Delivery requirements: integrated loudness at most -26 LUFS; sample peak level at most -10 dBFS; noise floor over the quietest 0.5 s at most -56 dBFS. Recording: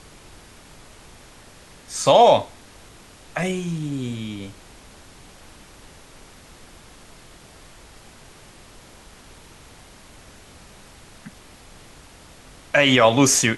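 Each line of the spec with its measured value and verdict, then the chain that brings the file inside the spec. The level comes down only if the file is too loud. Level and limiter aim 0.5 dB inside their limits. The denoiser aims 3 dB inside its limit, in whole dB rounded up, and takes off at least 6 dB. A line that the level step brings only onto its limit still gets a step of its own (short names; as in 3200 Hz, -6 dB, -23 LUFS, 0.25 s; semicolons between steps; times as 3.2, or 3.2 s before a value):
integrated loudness -18.5 LUFS: fail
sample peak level -3.0 dBFS: fail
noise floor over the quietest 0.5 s -47 dBFS: fail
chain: denoiser 6 dB, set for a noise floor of -47 dBFS; gain -8 dB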